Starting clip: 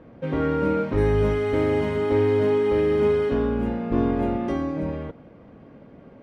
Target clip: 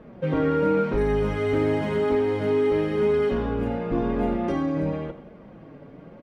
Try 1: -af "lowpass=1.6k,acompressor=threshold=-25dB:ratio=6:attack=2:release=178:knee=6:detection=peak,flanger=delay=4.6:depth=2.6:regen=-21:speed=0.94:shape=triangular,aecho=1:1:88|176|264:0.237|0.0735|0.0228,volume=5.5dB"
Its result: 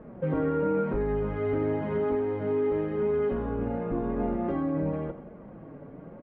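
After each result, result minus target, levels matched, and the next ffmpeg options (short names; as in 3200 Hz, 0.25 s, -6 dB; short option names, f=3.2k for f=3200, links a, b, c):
compressor: peak gain reduction +5.5 dB; 2000 Hz band -3.5 dB
-af "lowpass=1.6k,acompressor=threshold=-18dB:ratio=6:attack=2:release=178:knee=6:detection=peak,flanger=delay=4.6:depth=2.6:regen=-21:speed=0.94:shape=triangular,aecho=1:1:88|176|264:0.237|0.0735|0.0228,volume=5.5dB"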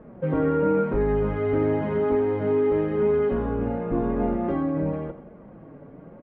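2000 Hz band -4.0 dB
-af "acompressor=threshold=-18dB:ratio=6:attack=2:release=178:knee=6:detection=peak,flanger=delay=4.6:depth=2.6:regen=-21:speed=0.94:shape=triangular,aecho=1:1:88|176|264:0.237|0.0735|0.0228,volume=5.5dB"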